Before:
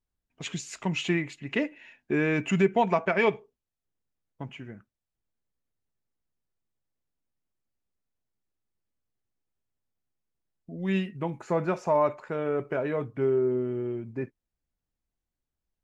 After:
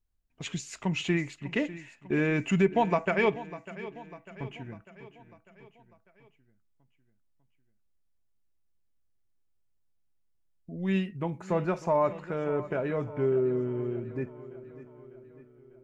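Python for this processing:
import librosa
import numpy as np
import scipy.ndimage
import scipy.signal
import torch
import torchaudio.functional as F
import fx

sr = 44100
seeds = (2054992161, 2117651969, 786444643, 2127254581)

p1 = fx.low_shelf(x, sr, hz=78.0, db=12.0)
p2 = p1 + fx.echo_feedback(p1, sr, ms=598, feedback_pct=55, wet_db=-16, dry=0)
y = p2 * 10.0 ** (-2.0 / 20.0)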